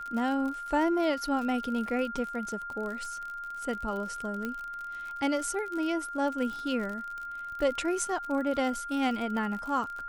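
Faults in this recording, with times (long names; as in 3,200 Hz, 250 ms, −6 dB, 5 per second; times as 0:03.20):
surface crackle 54 per second −35 dBFS
whistle 1,400 Hz −36 dBFS
0:04.45: click −21 dBFS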